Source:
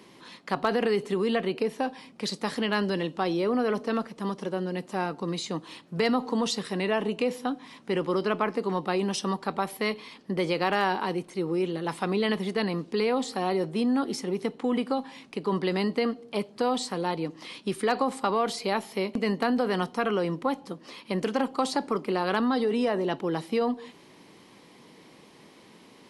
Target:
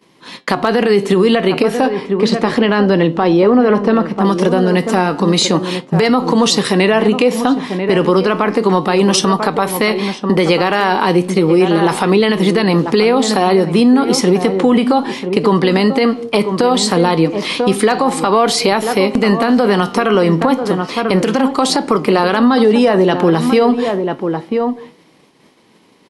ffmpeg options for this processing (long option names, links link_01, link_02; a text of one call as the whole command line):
ffmpeg -i in.wav -filter_complex "[0:a]agate=range=-33dB:threshold=-39dB:ratio=3:detection=peak,asettb=1/sr,asplit=3[link_01][link_02][link_03];[link_01]atrim=end=1.884[link_04];[link_02]atrim=start=1.88:end=4.25,asetpts=PTS-STARTPTS,afade=type=in:duration=0.004:curve=qsin,afade=type=out:start_time=2.366:duration=0.004:curve=qsin,lowpass=frequency=1700:poles=1[link_05];[link_03]atrim=start=4.246[link_06];[link_04][link_05]acrossfade=duration=0.004:curve1=hsin:curve2=qsin[link_07];[link_07][link_06]acrossfade=duration=0.004:curve1=qsin:curve2=hsin,asplit=2[link_08][link_09];[link_09]adelay=991.3,volume=-12dB,highshelf=frequency=4000:gain=-22.3[link_10];[link_08][link_10]amix=inputs=2:normalize=0,flanger=delay=5.9:depth=6.5:regen=81:speed=0.32:shape=triangular,acompressor=threshold=-36dB:ratio=4,alimiter=level_in=29dB:limit=-1dB:release=50:level=0:latency=1,volume=-1.5dB" out.wav